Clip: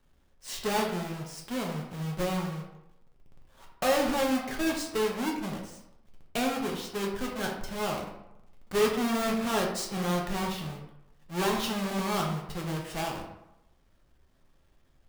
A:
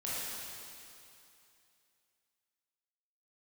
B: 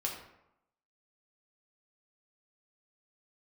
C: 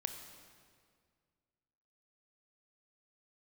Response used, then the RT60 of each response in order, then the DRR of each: B; 2.7 s, 0.85 s, 2.0 s; -9.0 dB, -1.0 dB, 6.0 dB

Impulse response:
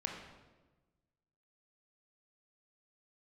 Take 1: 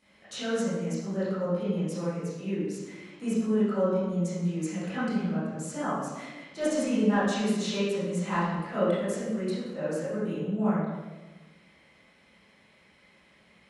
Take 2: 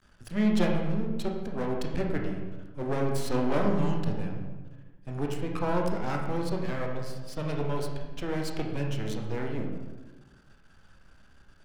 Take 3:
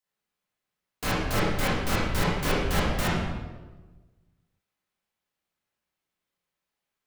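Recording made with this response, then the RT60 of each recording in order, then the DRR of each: 2; 1.2 s, 1.2 s, 1.2 s; -14.5 dB, 0.5 dB, -9.0 dB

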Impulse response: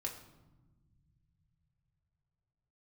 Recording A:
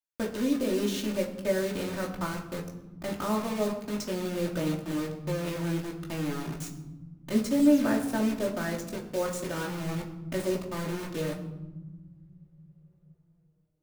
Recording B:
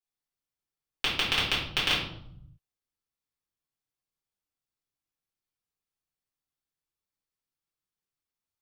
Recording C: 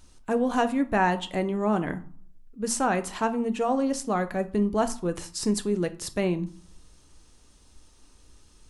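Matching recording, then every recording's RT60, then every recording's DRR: A; 1.1 s, 0.70 s, 0.50 s; -1.0 dB, -9.0 dB, 9.5 dB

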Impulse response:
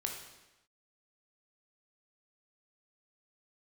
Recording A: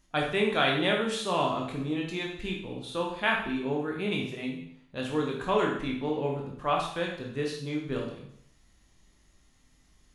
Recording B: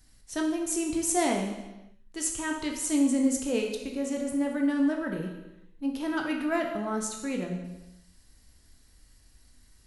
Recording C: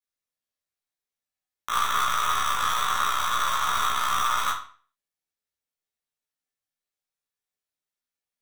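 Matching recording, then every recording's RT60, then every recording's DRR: B; 0.70 s, no single decay rate, 0.45 s; -1.0 dB, 1.0 dB, -8.0 dB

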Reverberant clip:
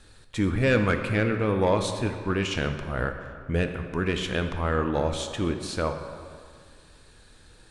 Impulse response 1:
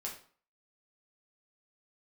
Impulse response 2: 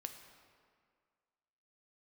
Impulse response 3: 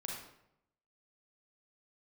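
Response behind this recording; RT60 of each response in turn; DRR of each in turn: 2; 0.45 s, 2.0 s, 0.80 s; -3.0 dB, 5.5 dB, -2.0 dB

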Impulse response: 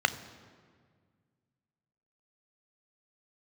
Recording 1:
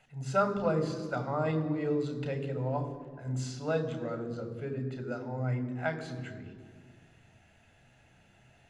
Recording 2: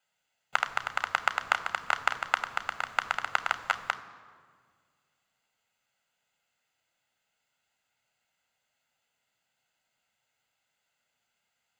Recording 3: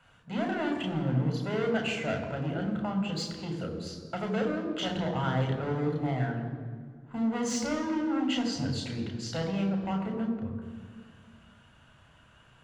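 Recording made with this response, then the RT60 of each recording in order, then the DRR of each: 2; 1.8 s, 1.8 s, 1.8 s; 7.5 dB, 11.5 dB, 2.0 dB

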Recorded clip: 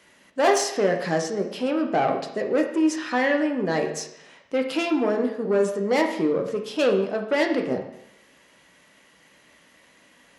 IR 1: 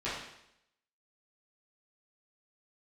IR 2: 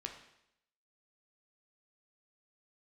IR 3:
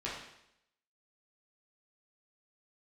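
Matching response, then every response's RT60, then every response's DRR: 2; 0.80 s, 0.80 s, 0.80 s; -12.0 dB, 2.5 dB, -7.5 dB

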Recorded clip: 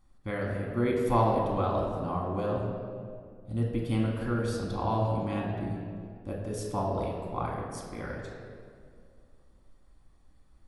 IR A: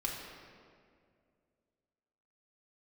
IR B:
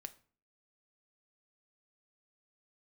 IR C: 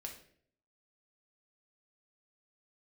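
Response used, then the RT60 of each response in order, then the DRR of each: A; 2.2 s, 0.45 s, 0.60 s; -2.0 dB, 9.0 dB, 0.5 dB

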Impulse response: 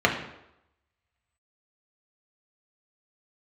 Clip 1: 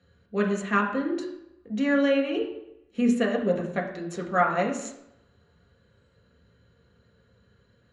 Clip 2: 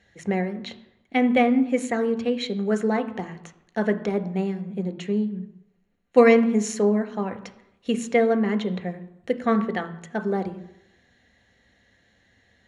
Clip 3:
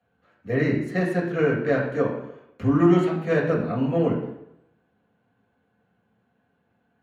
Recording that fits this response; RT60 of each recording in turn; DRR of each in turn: 1; 0.85 s, 0.85 s, 0.85 s; -0.5 dB, 9.0 dB, -5.0 dB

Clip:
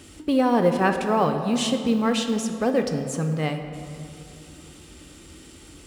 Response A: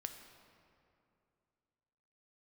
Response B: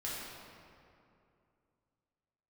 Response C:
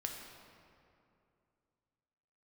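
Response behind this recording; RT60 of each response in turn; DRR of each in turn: A; 2.6 s, 2.6 s, 2.6 s; 5.5 dB, -8.0 dB, 1.0 dB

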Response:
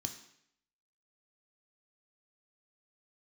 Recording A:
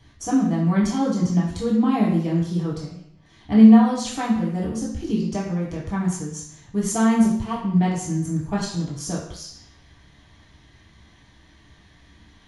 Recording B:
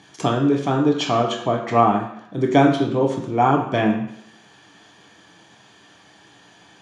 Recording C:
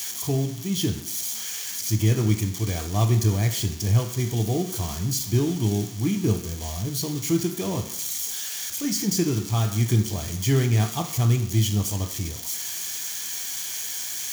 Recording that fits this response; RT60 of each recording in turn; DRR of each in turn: C; 0.70 s, 0.70 s, 0.70 s; -6.5 dB, 0.0 dB, 4.5 dB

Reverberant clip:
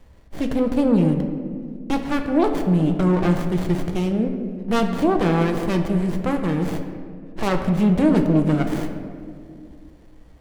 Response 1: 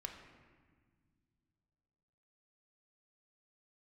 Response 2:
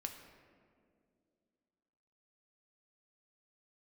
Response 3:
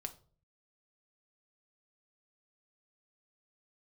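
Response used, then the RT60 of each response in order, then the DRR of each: 2; no single decay rate, 2.3 s, no single decay rate; 2.5 dB, 4.0 dB, 5.0 dB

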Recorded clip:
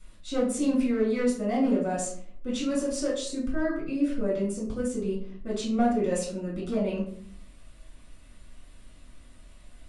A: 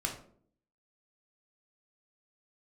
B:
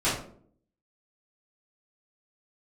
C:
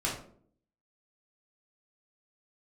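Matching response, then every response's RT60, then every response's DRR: C; 0.55 s, 0.55 s, 0.55 s; 0.5 dB, -12.5 dB, -5.5 dB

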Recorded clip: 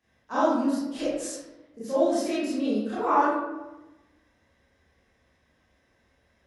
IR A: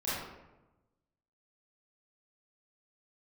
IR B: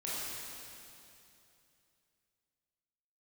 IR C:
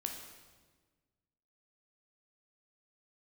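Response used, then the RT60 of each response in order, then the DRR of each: A; 1.0 s, 2.8 s, 1.4 s; -11.5 dB, -9.0 dB, 2.5 dB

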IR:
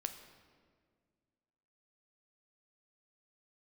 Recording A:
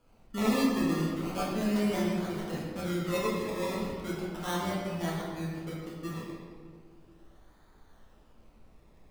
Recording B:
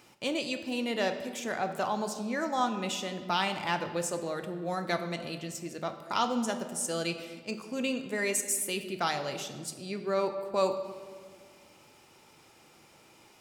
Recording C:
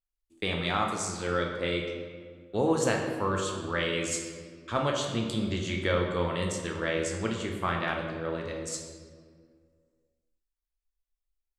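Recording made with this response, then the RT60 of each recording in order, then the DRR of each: B; 1.8 s, 1.9 s, 1.8 s; -6.5 dB, 7.0 dB, 0.5 dB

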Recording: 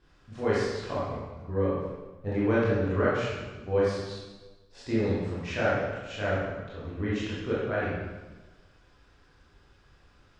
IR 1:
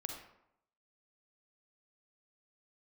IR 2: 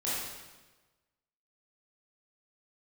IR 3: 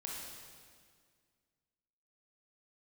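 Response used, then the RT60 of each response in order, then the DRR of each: 2; 0.80 s, 1.2 s, 1.9 s; 2.5 dB, -9.5 dB, -3.5 dB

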